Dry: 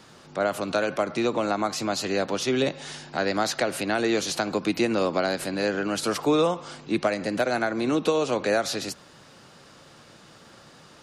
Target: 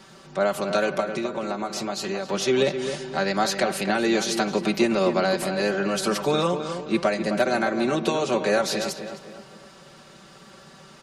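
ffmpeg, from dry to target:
ffmpeg -i in.wav -filter_complex "[0:a]aecho=1:1:5.2:0.71,asettb=1/sr,asplit=3[link_01][link_02][link_03];[link_01]atrim=end=1.004[link_04];[link_02]atrim=start=1:end=2.3,asetpts=PTS-STARTPTS,afade=type=in:duration=0.004:curve=qsin,afade=type=out:start_time=1.296:duration=0.004:curve=qsin,acompressor=threshold=-26dB:ratio=6[link_05];[link_03]atrim=start=2.296[link_06];[link_04][link_05]acrossfade=duration=0.004:curve1=hsin:curve2=qsin[link_07];[link_07][link_06]acrossfade=duration=0.004:curve1=qsin:curve2=hsin,asplit=2[link_08][link_09];[link_09]adelay=261,lowpass=frequency=2300:poles=1,volume=-8dB,asplit=2[link_10][link_11];[link_11]adelay=261,lowpass=frequency=2300:poles=1,volume=0.45,asplit=2[link_12][link_13];[link_13]adelay=261,lowpass=frequency=2300:poles=1,volume=0.45,asplit=2[link_14][link_15];[link_15]adelay=261,lowpass=frequency=2300:poles=1,volume=0.45,asplit=2[link_16][link_17];[link_17]adelay=261,lowpass=frequency=2300:poles=1,volume=0.45[link_18];[link_08][link_10][link_12][link_14][link_16][link_18]amix=inputs=6:normalize=0" out.wav

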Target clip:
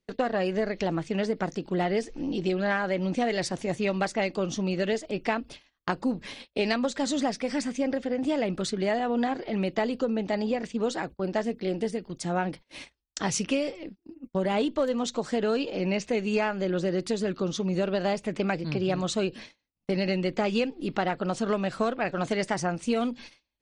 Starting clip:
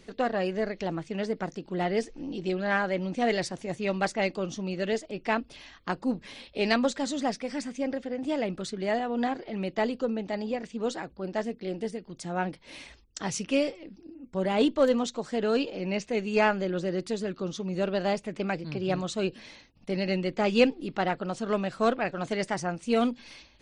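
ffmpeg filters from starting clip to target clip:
ffmpeg -i in.wav -af "agate=range=-33dB:threshold=-44dB:ratio=16:detection=peak,acompressor=threshold=-28dB:ratio=10,volume=5.5dB" out.wav

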